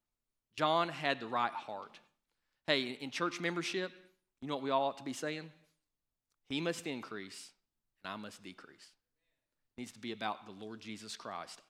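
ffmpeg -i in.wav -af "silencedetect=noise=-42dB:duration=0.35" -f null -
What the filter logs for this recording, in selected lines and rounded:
silence_start: 0.00
silence_end: 0.58 | silence_duration: 0.58
silence_start: 1.95
silence_end: 2.68 | silence_duration: 0.73
silence_start: 3.87
silence_end: 4.42 | silence_duration: 0.55
silence_start: 5.46
silence_end: 6.51 | silence_duration: 1.05
silence_start: 7.44
silence_end: 8.05 | silence_duration: 0.60
silence_start: 8.65
silence_end: 9.78 | silence_duration: 1.14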